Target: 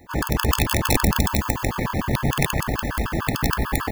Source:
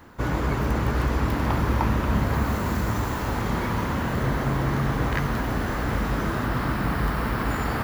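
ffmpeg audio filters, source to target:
-filter_complex "[0:a]atempo=2,asplit=7[s0][s1][s2][s3][s4][s5][s6];[s1]adelay=95,afreqshift=-70,volume=0.224[s7];[s2]adelay=190,afreqshift=-140,volume=0.12[s8];[s3]adelay=285,afreqshift=-210,volume=0.0653[s9];[s4]adelay=380,afreqshift=-280,volume=0.0351[s10];[s5]adelay=475,afreqshift=-350,volume=0.0191[s11];[s6]adelay=570,afreqshift=-420,volume=0.0102[s12];[s0][s7][s8][s9][s10][s11][s12]amix=inputs=7:normalize=0,aeval=exprs='0.355*(cos(1*acos(clip(val(0)/0.355,-1,1)))-cos(1*PI/2))+0.1*(cos(2*acos(clip(val(0)/0.355,-1,1)))-cos(2*PI/2))+0.0112*(cos(5*acos(clip(val(0)/0.355,-1,1)))-cos(5*PI/2))+0.0282*(cos(7*acos(clip(val(0)/0.355,-1,1)))-cos(7*PI/2))':c=same,aeval=exprs='(mod(4.47*val(0)+1,2)-1)/4.47':c=same,highshelf=f=9200:g=5,bandreject=f=1400:w=15,afftfilt=real='re*gt(sin(2*PI*6.7*pts/sr)*(1-2*mod(floor(b*sr/1024/870),2)),0)':imag='im*gt(sin(2*PI*6.7*pts/sr)*(1-2*mod(floor(b*sr/1024/870),2)),0)':win_size=1024:overlap=0.75,volume=2.11"

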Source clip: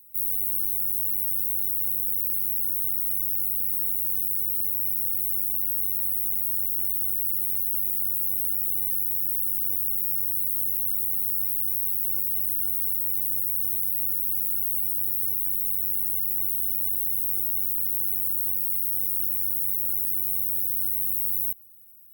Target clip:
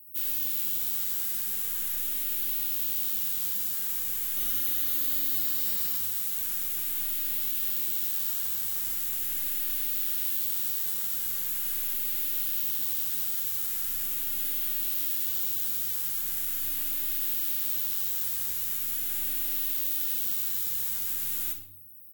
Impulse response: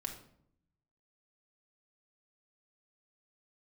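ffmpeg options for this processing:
-filter_complex "[0:a]asettb=1/sr,asplit=3[s0][s1][s2];[s0]atrim=end=4.364[s3];[s1]atrim=start=4.36:end=5.96,asetpts=PTS-STARTPTS,afade=t=in:d=0.004:c=qsin,afade=t=out:st=1.596:d=0.004:c=qsin,aecho=1:1:4.1:0.75,atrim=end_sample=70560[s4];[s2]atrim=start=5.956[s5];[s3][s4]acrossfade=d=0.004:c1=hsin:c2=qsin[s6];[s6][s5]acrossfade=d=0.004:c1=qsin:c2=hsin,asoftclip=type=tanh:threshold=0.0473[s7];[1:a]atrim=start_sample=2205,asetrate=37926,aresample=44100[s8];[s7][s8]afir=irnorm=-1:irlink=0,asplit=2[s9][s10];[s10]adelay=4.3,afreqshift=0.41[s11];[s9][s11]amix=inputs=2:normalize=1,volume=1.88"

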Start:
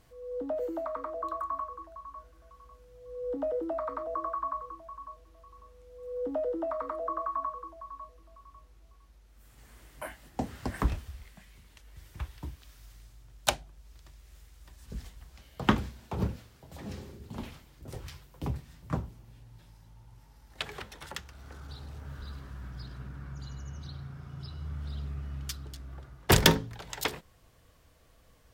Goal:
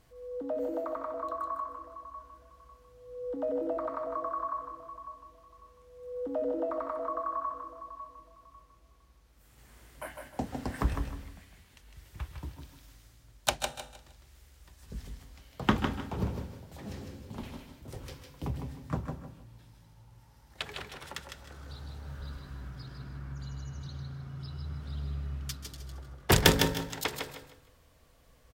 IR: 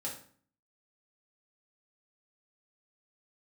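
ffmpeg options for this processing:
-filter_complex "[0:a]aecho=1:1:155|310|465|620:0.531|0.149|0.0416|0.0117,asplit=2[s0][s1];[1:a]atrim=start_sample=2205,adelay=133[s2];[s1][s2]afir=irnorm=-1:irlink=0,volume=0.237[s3];[s0][s3]amix=inputs=2:normalize=0,volume=0.841"

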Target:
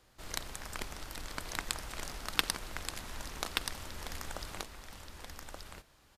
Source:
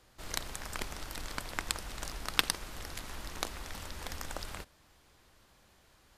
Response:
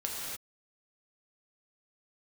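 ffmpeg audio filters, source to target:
-af "aecho=1:1:1178:0.596,volume=0.794"

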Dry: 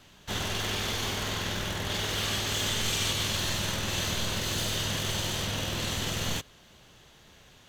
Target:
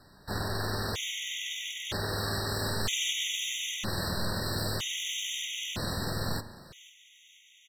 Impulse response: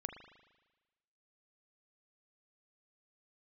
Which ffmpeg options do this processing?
-filter_complex "[0:a]aecho=1:1:494|988|1482:0.1|0.044|0.0194,asplit=2[s0][s1];[1:a]atrim=start_sample=2205[s2];[s1][s2]afir=irnorm=-1:irlink=0,volume=1.19[s3];[s0][s3]amix=inputs=2:normalize=0,afftfilt=real='re*gt(sin(2*PI*0.52*pts/sr)*(1-2*mod(floor(b*sr/1024/1900),2)),0)':imag='im*gt(sin(2*PI*0.52*pts/sr)*(1-2*mod(floor(b*sr/1024/1900),2)),0)':win_size=1024:overlap=0.75,volume=0.562"

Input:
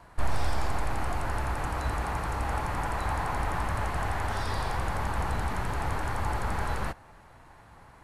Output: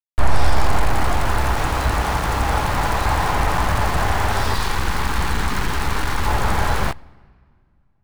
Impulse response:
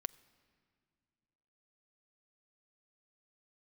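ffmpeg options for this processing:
-filter_complex "[0:a]asettb=1/sr,asplit=3[s0][s1][s2];[s0]atrim=end=4.544[s3];[s1]atrim=start=4.54:end=6.28,asetpts=PTS-STARTPTS,afade=t=in:d=0.004:c=qsin,afade=t=out:st=1.736:d=0.004:c=qsin,equalizer=f=100:t=o:w=0.67:g=-8,equalizer=f=630:t=o:w=0.67:g=-12,equalizer=f=4000:t=o:w=0.67:g=4[s4];[s2]atrim=start=6.276[s5];[s3][s4]acrossfade=d=0.004:c1=hsin:c2=qsin[s6];[s6][s5]acrossfade=d=0.004:c1=qsin:c2=hsin,aeval=exprs='val(0)*gte(abs(val(0)),0.0211)':c=same,asplit=2[s7][s8];[1:a]atrim=start_sample=2205,highshelf=f=9500:g=-8.5[s9];[s8][s9]afir=irnorm=-1:irlink=0,volume=1.58[s10];[s7][s10]amix=inputs=2:normalize=0,volume=1.58"

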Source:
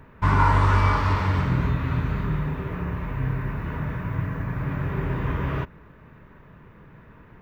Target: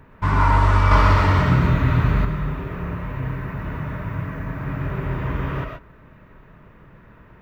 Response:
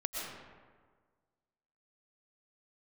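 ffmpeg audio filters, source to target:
-filter_complex "[1:a]atrim=start_sample=2205,afade=t=out:st=0.19:d=0.01,atrim=end_sample=8820[s0];[0:a][s0]afir=irnorm=-1:irlink=0,asettb=1/sr,asplit=3[s1][s2][s3];[s1]atrim=end=0.914[s4];[s2]atrim=start=0.91:end=2.25,asetpts=PTS-STARTPTS,afade=t=in:d=0.004:c=qsin,afade=t=out:st=1.336:d=0.004:c=qsin,acontrast=39[s5];[s3]atrim=start=2.246[s6];[s4][s5]acrossfade=d=0.004:c1=hsin:c2=qsin[s7];[s7][s6]acrossfade=d=0.004:c1=qsin:c2=hsin,volume=1.12"

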